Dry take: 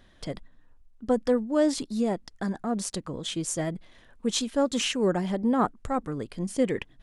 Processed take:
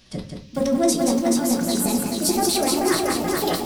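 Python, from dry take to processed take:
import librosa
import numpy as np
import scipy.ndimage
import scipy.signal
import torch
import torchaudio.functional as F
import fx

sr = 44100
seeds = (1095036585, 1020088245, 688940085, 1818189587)

p1 = fx.pitch_glide(x, sr, semitones=9.0, runs='starting unshifted')
p2 = scipy.signal.sosfilt(scipy.signal.butter(2, 72.0, 'highpass', fs=sr, output='sos'), p1)
p3 = fx.bass_treble(p2, sr, bass_db=9, treble_db=9)
p4 = fx.hum_notches(p3, sr, base_hz=60, count=9)
p5 = fx.transient(p4, sr, attack_db=0, sustain_db=12)
p6 = fx.dmg_noise_band(p5, sr, seeds[0], low_hz=2300.0, high_hz=5900.0, level_db=-57.0)
p7 = fx.stretch_vocoder(p6, sr, factor=0.52)
p8 = p7 + fx.echo_single(p7, sr, ms=177, db=-5.0, dry=0)
p9 = fx.room_shoebox(p8, sr, seeds[1], volume_m3=200.0, walls='furnished', distance_m=1.0)
y = fx.echo_crushed(p9, sr, ms=430, feedback_pct=55, bits=7, wet_db=-3.0)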